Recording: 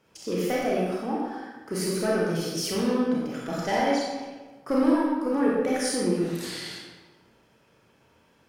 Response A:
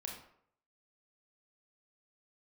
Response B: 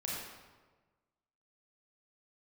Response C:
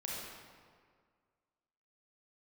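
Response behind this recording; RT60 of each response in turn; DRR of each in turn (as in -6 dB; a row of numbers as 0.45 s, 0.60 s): B; 0.65 s, 1.3 s, 1.9 s; -0.5 dB, -5.0 dB, -5.0 dB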